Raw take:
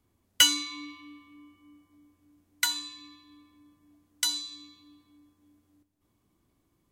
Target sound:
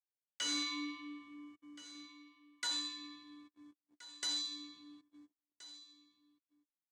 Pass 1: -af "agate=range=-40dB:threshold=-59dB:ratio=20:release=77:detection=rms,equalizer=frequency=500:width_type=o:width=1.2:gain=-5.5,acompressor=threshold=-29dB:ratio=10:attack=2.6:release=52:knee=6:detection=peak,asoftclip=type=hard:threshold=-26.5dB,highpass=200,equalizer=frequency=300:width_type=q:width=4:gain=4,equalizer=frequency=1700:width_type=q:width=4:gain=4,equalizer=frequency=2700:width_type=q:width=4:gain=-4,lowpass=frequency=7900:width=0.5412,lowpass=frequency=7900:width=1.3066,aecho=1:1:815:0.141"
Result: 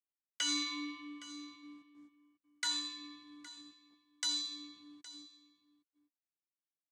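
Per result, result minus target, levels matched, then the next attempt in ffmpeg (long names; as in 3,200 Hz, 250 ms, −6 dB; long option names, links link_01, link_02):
echo 559 ms early; hard clipping: distortion −8 dB
-af "agate=range=-40dB:threshold=-59dB:ratio=20:release=77:detection=rms,equalizer=frequency=500:width_type=o:width=1.2:gain=-5.5,acompressor=threshold=-29dB:ratio=10:attack=2.6:release=52:knee=6:detection=peak,asoftclip=type=hard:threshold=-26.5dB,highpass=200,equalizer=frequency=300:width_type=q:width=4:gain=4,equalizer=frequency=1700:width_type=q:width=4:gain=4,equalizer=frequency=2700:width_type=q:width=4:gain=-4,lowpass=frequency=7900:width=0.5412,lowpass=frequency=7900:width=1.3066,aecho=1:1:1374:0.141"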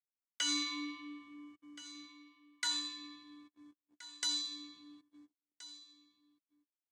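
hard clipping: distortion −8 dB
-af "agate=range=-40dB:threshold=-59dB:ratio=20:release=77:detection=rms,equalizer=frequency=500:width_type=o:width=1.2:gain=-5.5,acompressor=threshold=-29dB:ratio=10:attack=2.6:release=52:knee=6:detection=peak,asoftclip=type=hard:threshold=-33dB,highpass=200,equalizer=frequency=300:width_type=q:width=4:gain=4,equalizer=frequency=1700:width_type=q:width=4:gain=4,equalizer=frequency=2700:width_type=q:width=4:gain=-4,lowpass=frequency=7900:width=0.5412,lowpass=frequency=7900:width=1.3066,aecho=1:1:1374:0.141"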